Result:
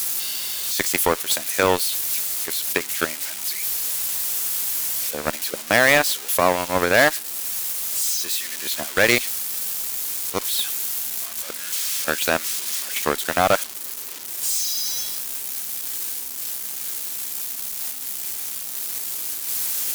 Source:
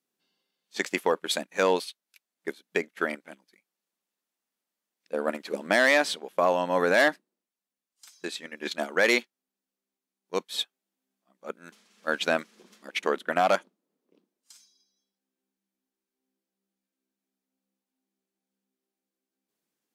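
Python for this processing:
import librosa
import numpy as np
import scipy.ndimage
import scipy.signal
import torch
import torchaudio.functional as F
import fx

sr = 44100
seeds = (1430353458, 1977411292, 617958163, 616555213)

y = x + 0.5 * 10.0 ** (-18.0 / 20.0) * np.diff(np.sign(x), prepend=np.sign(x[:1]))
y = fx.cheby_harmonics(y, sr, harmonics=(7,), levels_db=(-18,), full_scale_db=-8.0)
y = y * 10.0 ** (6.0 / 20.0)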